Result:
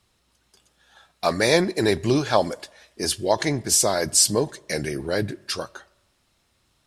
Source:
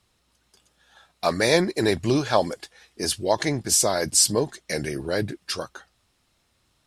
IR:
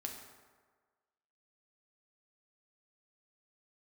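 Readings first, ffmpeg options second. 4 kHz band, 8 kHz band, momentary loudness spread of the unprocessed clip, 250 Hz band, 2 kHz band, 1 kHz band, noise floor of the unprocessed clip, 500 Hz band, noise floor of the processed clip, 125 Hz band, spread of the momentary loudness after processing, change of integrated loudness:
+1.0 dB, +1.0 dB, 12 LU, +1.0 dB, +1.0 dB, +1.0 dB, -69 dBFS, +1.0 dB, -68 dBFS, +1.0 dB, 12 LU, +1.0 dB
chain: -filter_complex "[0:a]asplit=2[s0][s1];[1:a]atrim=start_sample=2205,asetrate=66150,aresample=44100[s2];[s1][s2]afir=irnorm=-1:irlink=0,volume=0.266[s3];[s0][s3]amix=inputs=2:normalize=0"

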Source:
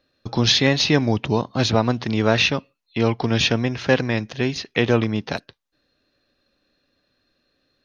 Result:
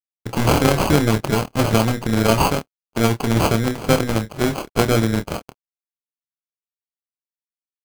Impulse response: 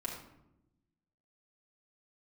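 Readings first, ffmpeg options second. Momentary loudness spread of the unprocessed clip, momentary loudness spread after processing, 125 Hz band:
10 LU, 8 LU, +3.0 dB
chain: -filter_complex "[0:a]acrusher=samples=24:mix=1:aa=0.000001,acontrast=53,aeval=exprs='sgn(val(0))*max(abs(val(0))-0.00531,0)':c=same,tremolo=f=240:d=0.824,asplit=2[s0][s1];[s1]adelay=27,volume=0.376[s2];[s0][s2]amix=inputs=2:normalize=0"

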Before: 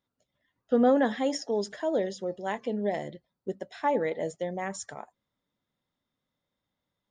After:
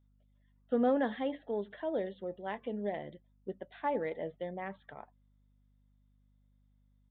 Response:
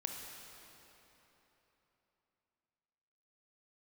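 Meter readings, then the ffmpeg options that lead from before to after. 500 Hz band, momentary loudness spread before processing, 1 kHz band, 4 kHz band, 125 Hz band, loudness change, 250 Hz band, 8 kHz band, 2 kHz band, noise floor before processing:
-6.5 dB, 16 LU, -6.5 dB, -11.5 dB, -6.5 dB, -6.5 dB, -6.5 dB, under -35 dB, -6.5 dB, under -85 dBFS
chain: -af "aeval=exprs='val(0)+0.001*(sin(2*PI*50*n/s)+sin(2*PI*2*50*n/s)/2+sin(2*PI*3*50*n/s)/3+sin(2*PI*4*50*n/s)/4+sin(2*PI*5*50*n/s)/5)':c=same,aresample=8000,aresample=44100,aeval=exprs='0.237*(cos(1*acos(clip(val(0)/0.237,-1,1)))-cos(1*PI/2))+0.00168*(cos(7*acos(clip(val(0)/0.237,-1,1)))-cos(7*PI/2))':c=same,volume=0.473"

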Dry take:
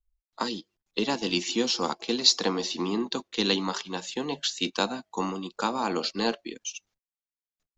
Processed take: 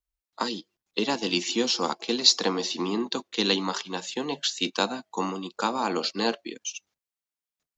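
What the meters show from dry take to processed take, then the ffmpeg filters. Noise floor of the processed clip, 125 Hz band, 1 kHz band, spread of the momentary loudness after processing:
under -85 dBFS, -0.5 dB, +1.5 dB, 11 LU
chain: -af "highpass=f=150:p=1,volume=1.19"

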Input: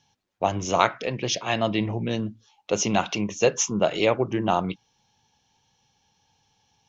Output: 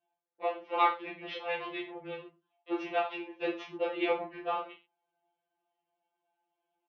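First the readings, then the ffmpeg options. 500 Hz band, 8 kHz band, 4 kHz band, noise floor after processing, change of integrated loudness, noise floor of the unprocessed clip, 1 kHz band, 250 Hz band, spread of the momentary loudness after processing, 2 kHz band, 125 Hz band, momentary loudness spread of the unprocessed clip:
-10.0 dB, no reading, -13.0 dB, under -85 dBFS, -9.0 dB, -69 dBFS, -6.5 dB, -12.5 dB, 13 LU, -7.5 dB, -28.5 dB, 7 LU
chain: -filter_complex "[0:a]adynamicsmooth=sensitivity=2.5:basefreq=1200,highpass=f=420:t=q:w=0.5412,highpass=f=420:t=q:w=1.307,lowpass=f=3600:t=q:w=0.5176,lowpass=f=3600:t=q:w=0.7071,lowpass=f=3600:t=q:w=1.932,afreqshift=-76,asplit=2[s0][s1];[s1]aecho=0:1:20|42|66.2|92.82|122.1:0.631|0.398|0.251|0.158|0.1[s2];[s0][s2]amix=inputs=2:normalize=0,afftfilt=real='re*2.83*eq(mod(b,8),0)':imag='im*2.83*eq(mod(b,8),0)':win_size=2048:overlap=0.75,volume=0.531"

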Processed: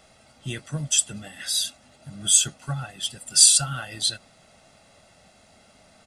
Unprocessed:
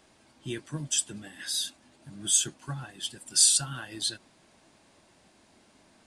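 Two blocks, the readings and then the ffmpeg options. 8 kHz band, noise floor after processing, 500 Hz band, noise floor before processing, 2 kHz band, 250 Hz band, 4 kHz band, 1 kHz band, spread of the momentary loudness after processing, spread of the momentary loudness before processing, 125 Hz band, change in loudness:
+6.0 dB, -57 dBFS, +2.0 dB, -62 dBFS, +5.5 dB, +2.5 dB, +6.0 dB, +7.0 dB, 20 LU, 19 LU, +7.0 dB, +6.0 dB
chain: -af "aecho=1:1:1.5:0.65,volume=1.68"

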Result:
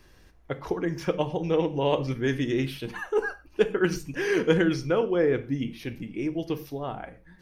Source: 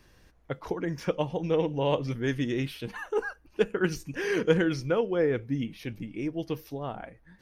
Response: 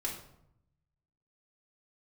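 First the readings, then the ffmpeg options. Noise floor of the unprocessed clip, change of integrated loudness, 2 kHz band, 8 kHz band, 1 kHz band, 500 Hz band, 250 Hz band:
-60 dBFS, +2.5 dB, +2.5 dB, +2.5 dB, +2.5 dB, +2.5 dB, +2.5 dB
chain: -filter_complex "[0:a]asplit=2[s0][s1];[1:a]atrim=start_sample=2205,afade=t=out:st=0.18:d=0.01,atrim=end_sample=8379[s2];[s1][s2]afir=irnorm=-1:irlink=0,volume=0.376[s3];[s0][s3]amix=inputs=2:normalize=0"

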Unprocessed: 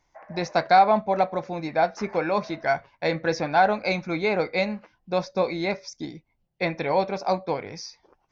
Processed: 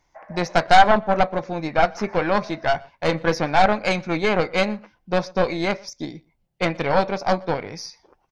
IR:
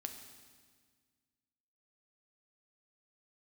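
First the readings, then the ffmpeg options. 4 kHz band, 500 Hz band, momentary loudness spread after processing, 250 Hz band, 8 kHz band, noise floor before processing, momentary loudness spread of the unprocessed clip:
+6.0 dB, +2.5 dB, 14 LU, +4.0 dB, no reading, -71 dBFS, 13 LU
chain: -filter_complex "[0:a]aeval=exprs='0.473*(cos(1*acos(clip(val(0)/0.473,-1,1)))-cos(1*PI/2))+0.119*(cos(4*acos(clip(val(0)/0.473,-1,1)))-cos(4*PI/2))':c=same,asplit=2[s0][s1];[s1]adelay=122.4,volume=0.0501,highshelf=f=4000:g=-2.76[s2];[s0][s2]amix=inputs=2:normalize=0,volume=1.41"

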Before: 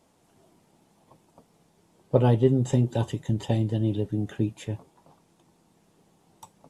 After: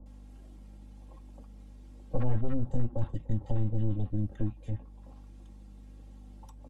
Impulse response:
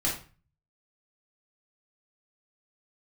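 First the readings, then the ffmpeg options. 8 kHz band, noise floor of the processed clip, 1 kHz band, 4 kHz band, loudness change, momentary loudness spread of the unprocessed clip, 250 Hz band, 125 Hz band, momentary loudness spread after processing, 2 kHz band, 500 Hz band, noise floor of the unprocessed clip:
under -15 dB, -49 dBFS, -11.5 dB, under -15 dB, -8.0 dB, 10 LU, -9.0 dB, -6.5 dB, 20 LU, under -10 dB, -14.0 dB, -65 dBFS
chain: -filter_complex "[0:a]acrossover=split=300|480|1500[s0][s1][s2][s3];[s3]acompressor=threshold=0.00158:ratio=6[s4];[s0][s1][s2][s4]amix=inputs=4:normalize=0,lowshelf=f=190:g=6,aeval=exprs='val(0)+0.00355*(sin(2*PI*50*n/s)+sin(2*PI*2*50*n/s)/2+sin(2*PI*3*50*n/s)/3+sin(2*PI*4*50*n/s)/4+sin(2*PI*5*50*n/s)/5)':c=same,aeval=exprs='(tanh(8.91*val(0)+0.6)-tanh(0.6))/8.91':c=same,acrossover=split=130[s5][s6];[s6]acompressor=threshold=0.001:ratio=1.5[s7];[s5][s7]amix=inputs=2:normalize=0,highshelf=f=6500:g=-7,aecho=1:1:3.7:0.63,acrossover=split=980[s8][s9];[s9]adelay=60[s10];[s8][s10]amix=inputs=2:normalize=0,volume=1.41"

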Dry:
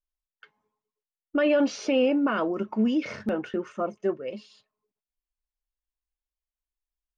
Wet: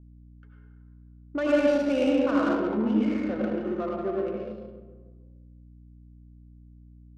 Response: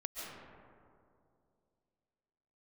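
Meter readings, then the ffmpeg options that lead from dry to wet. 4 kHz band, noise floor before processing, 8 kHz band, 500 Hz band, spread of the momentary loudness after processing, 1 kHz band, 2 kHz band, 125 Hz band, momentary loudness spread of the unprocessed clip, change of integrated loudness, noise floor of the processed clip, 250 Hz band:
-4.0 dB, under -85 dBFS, no reading, +0.5 dB, 13 LU, 0.0 dB, -1.5 dB, +3.5 dB, 10 LU, +0.5 dB, -51 dBFS, +1.0 dB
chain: -filter_complex "[1:a]atrim=start_sample=2205,asetrate=79380,aresample=44100[s0];[0:a][s0]afir=irnorm=-1:irlink=0,aeval=exprs='val(0)+0.00224*(sin(2*PI*60*n/s)+sin(2*PI*2*60*n/s)/2+sin(2*PI*3*60*n/s)/3+sin(2*PI*4*60*n/s)/4+sin(2*PI*5*60*n/s)/5)':c=same,adynamicsmooth=sensitivity=6:basefreq=1100,volume=1.68"

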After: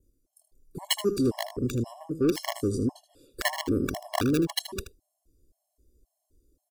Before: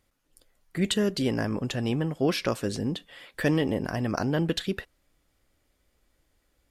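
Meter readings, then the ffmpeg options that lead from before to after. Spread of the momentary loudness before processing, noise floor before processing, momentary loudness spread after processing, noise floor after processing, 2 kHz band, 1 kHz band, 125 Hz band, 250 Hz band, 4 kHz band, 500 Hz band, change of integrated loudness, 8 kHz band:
8 LU, -72 dBFS, 9 LU, -81 dBFS, -2.0 dB, +1.0 dB, -3.5 dB, -1.0 dB, +0.5 dB, -1.0 dB, -0.5 dB, +3.0 dB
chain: -filter_complex "[0:a]aecho=1:1:2.8:0.56,adynamicequalizer=threshold=0.00794:dfrequency=4100:dqfactor=2:tfrequency=4100:tqfactor=2:attack=5:release=100:ratio=0.375:range=1.5:mode=cutabove:tftype=bell,acrossover=split=610|5400[s0][s1][s2];[s0]asoftclip=type=tanh:threshold=0.0708[s3];[s1]acrusher=bits=3:mix=0:aa=0.000001[s4];[s2]flanger=delay=19:depth=7.8:speed=0.98[s5];[s3][s4][s5]amix=inputs=3:normalize=0,aecho=1:1:78:0.251,afftfilt=real='re*gt(sin(2*PI*1.9*pts/sr)*(1-2*mod(floor(b*sr/1024/560),2)),0)':imag='im*gt(sin(2*PI*1.9*pts/sr)*(1-2*mod(floor(b*sr/1024/560),2)),0)':win_size=1024:overlap=0.75,volume=1.78"

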